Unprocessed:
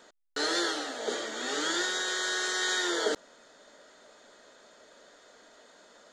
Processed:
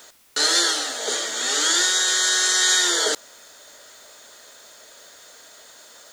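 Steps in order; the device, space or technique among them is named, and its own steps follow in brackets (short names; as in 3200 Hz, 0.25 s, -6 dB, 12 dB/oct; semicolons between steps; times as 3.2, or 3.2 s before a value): turntable without a phono preamp (RIAA curve recording; white noise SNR 32 dB); gain +5.5 dB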